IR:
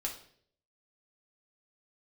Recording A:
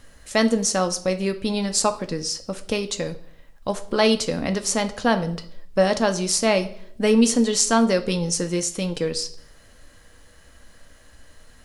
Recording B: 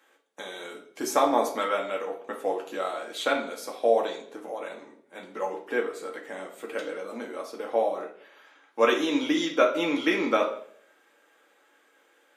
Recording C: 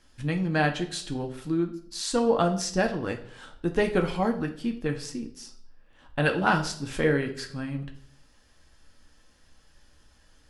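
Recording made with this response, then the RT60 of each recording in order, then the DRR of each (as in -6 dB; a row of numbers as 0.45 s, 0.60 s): B; 0.60 s, 0.60 s, 0.60 s; 7.0 dB, -1.0 dB, 3.0 dB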